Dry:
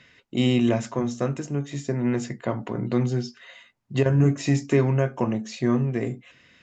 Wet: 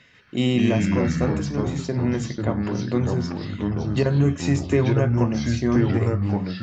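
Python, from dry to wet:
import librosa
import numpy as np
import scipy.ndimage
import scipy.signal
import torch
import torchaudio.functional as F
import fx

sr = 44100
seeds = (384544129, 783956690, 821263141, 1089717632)

y = fx.echo_pitch(x, sr, ms=137, semitones=-3, count=3, db_per_echo=-3.0)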